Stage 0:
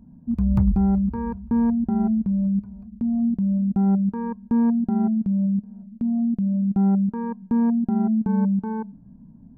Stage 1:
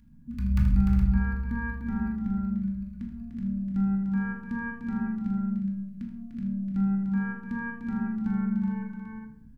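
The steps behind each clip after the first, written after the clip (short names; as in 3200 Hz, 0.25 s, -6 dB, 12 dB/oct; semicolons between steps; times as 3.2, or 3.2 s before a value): EQ curve 130 Hz 0 dB, 300 Hz -11 dB, 730 Hz -16 dB, 1700 Hz +12 dB; on a send: tapped delay 79/133/298/359/418 ms -9.5/-19/-7/-10.5/-8 dB; on the sum: shoebox room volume 770 m³, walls furnished, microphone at 2.4 m; gain -7.5 dB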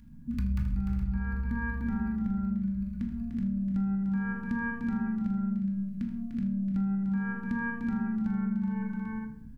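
compressor 5:1, threshold -32 dBFS, peak gain reduction 14.5 dB; gain +4.5 dB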